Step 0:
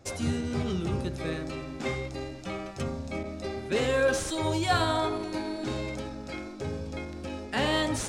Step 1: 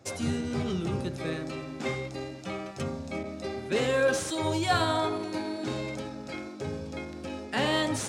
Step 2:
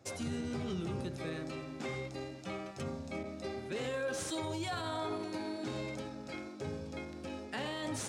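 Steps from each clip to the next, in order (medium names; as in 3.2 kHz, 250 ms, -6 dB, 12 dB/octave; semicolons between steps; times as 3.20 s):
high-pass 90 Hz 24 dB/octave
peak limiter -23.5 dBFS, peak gain reduction 10.5 dB; trim -5.5 dB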